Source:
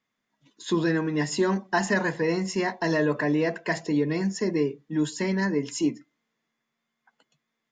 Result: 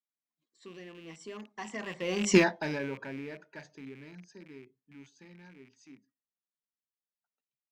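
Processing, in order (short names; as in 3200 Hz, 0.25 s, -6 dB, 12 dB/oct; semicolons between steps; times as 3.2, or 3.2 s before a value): rattling part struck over -34 dBFS, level -22 dBFS; Doppler pass-by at 2.35, 30 m/s, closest 1.5 m; gain +7 dB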